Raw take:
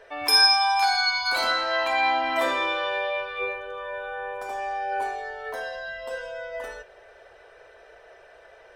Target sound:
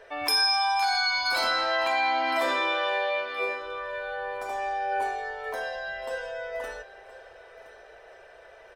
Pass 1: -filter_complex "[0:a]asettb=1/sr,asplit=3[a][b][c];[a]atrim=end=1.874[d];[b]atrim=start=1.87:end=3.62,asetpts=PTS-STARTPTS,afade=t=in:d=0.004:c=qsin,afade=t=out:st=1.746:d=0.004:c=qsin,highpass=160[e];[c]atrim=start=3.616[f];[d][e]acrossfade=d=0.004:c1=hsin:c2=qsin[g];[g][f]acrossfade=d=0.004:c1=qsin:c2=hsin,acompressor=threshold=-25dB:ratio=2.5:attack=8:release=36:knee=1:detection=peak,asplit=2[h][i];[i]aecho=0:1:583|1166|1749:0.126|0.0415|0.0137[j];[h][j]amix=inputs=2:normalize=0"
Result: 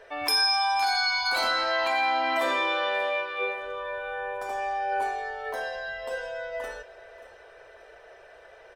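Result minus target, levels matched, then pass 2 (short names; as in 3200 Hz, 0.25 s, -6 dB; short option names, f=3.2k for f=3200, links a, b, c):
echo 0.437 s early
-filter_complex "[0:a]asettb=1/sr,asplit=3[a][b][c];[a]atrim=end=1.874[d];[b]atrim=start=1.87:end=3.62,asetpts=PTS-STARTPTS,afade=t=in:d=0.004:c=qsin,afade=t=out:st=1.746:d=0.004:c=qsin,highpass=160[e];[c]atrim=start=3.616[f];[d][e]acrossfade=d=0.004:c1=hsin:c2=qsin[g];[g][f]acrossfade=d=0.004:c1=qsin:c2=hsin,acompressor=threshold=-25dB:ratio=2.5:attack=8:release=36:knee=1:detection=peak,asplit=2[h][i];[i]aecho=0:1:1020|2040|3060:0.126|0.0415|0.0137[j];[h][j]amix=inputs=2:normalize=0"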